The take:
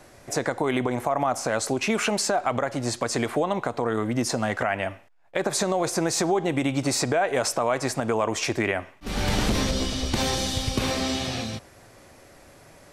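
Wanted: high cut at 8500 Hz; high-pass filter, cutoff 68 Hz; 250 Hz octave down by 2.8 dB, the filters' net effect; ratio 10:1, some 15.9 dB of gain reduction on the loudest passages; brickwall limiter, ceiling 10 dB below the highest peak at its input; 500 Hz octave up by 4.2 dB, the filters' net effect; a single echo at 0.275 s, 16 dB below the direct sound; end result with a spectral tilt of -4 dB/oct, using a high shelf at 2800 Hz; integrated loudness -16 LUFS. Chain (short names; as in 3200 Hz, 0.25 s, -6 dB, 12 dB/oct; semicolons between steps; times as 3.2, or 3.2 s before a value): HPF 68 Hz; LPF 8500 Hz; bell 250 Hz -6 dB; bell 500 Hz +7 dB; high shelf 2800 Hz -4.5 dB; compressor 10:1, threshold -33 dBFS; limiter -29 dBFS; echo 0.275 s -16 dB; gain +24 dB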